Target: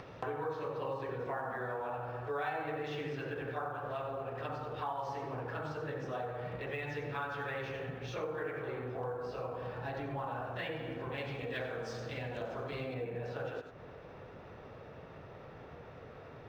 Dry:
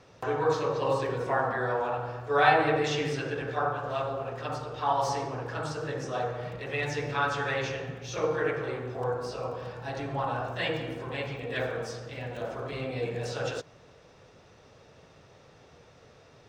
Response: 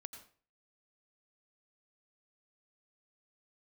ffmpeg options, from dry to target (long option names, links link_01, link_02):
-filter_complex "[1:a]atrim=start_sample=2205,afade=type=out:start_time=0.15:duration=0.01,atrim=end_sample=7056[link_01];[0:a][link_01]afir=irnorm=-1:irlink=0,acompressor=threshold=-47dB:ratio=4,asetnsamples=nb_out_samples=441:pad=0,asendcmd='11.18 lowpass f 5400;12.94 lowpass f 2100',lowpass=3000,acompressor=mode=upward:threshold=-54dB:ratio=2.5,volume=9dB" -ar 44100 -c:a adpcm_ima_wav